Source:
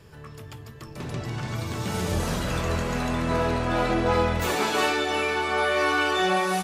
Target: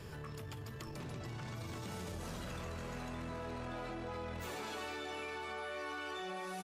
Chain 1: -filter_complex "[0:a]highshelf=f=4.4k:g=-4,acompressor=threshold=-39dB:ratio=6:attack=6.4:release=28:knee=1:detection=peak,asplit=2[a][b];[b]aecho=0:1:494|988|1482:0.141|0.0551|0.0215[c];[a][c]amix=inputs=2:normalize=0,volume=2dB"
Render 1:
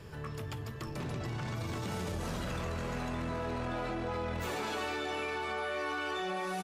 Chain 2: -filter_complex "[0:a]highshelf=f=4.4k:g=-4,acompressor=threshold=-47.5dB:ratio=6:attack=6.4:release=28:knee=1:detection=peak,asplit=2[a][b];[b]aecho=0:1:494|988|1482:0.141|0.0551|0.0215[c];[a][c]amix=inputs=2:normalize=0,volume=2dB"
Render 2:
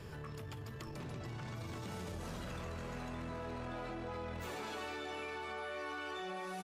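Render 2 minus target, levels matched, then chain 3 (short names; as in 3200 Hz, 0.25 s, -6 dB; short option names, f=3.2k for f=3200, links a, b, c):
8000 Hz band -2.5 dB
-filter_complex "[0:a]acompressor=threshold=-47.5dB:ratio=6:attack=6.4:release=28:knee=1:detection=peak,asplit=2[a][b];[b]aecho=0:1:494|988|1482:0.141|0.0551|0.0215[c];[a][c]amix=inputs=2:normalize=0,volume=2dB"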